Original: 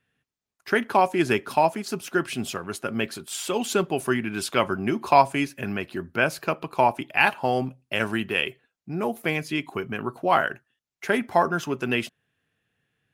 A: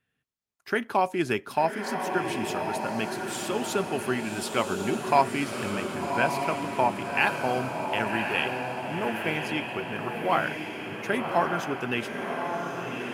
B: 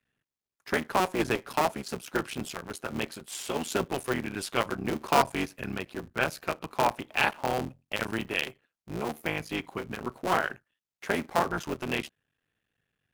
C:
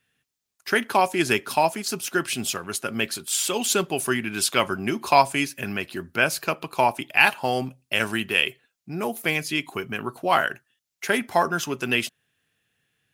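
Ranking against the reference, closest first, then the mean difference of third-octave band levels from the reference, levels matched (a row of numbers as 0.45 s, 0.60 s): C, B, A; 3.5 dB, 6.0 dB, 8.5 dB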